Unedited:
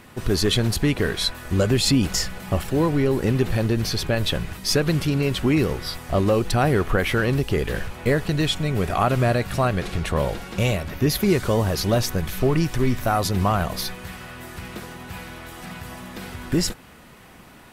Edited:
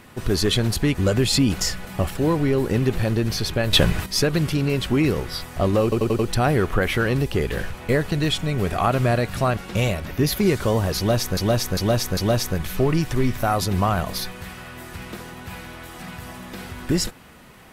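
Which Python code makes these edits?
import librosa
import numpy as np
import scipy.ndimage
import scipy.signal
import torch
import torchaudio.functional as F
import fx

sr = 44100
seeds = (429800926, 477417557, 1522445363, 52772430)

y = fx.edit(x, sr, fx.cut(start_s=0.95, length_s=0.53),
    fx.clip_gain(start_s=4.26, length_s=0.33, db=8.0),
    fx.stutter(start_s=6.36, slice_s=0.09, count=5),
    fx.cut(start_s=9.74, length_s=0.66),
    fx.repeat(start_s=11.8, length_s=0.4, count=4), tone=tone)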